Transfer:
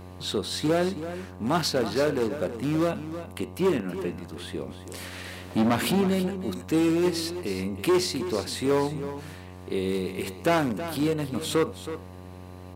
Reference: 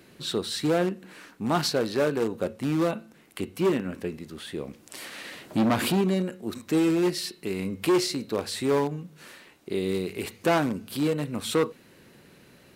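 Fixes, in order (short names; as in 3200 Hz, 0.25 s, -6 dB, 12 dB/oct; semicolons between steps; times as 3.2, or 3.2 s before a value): de-hum 91.1 Hz, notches 13; inverse comb 0.322 s -11.5 dB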